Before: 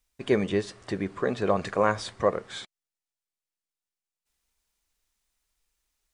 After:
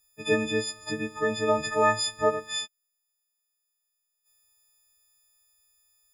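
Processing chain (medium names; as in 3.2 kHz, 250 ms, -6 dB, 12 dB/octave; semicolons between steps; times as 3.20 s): partials quantised in pitch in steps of 6 st; 0.55–2.55 s: word length cut 12-bit, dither triangular; trim -2.5 dB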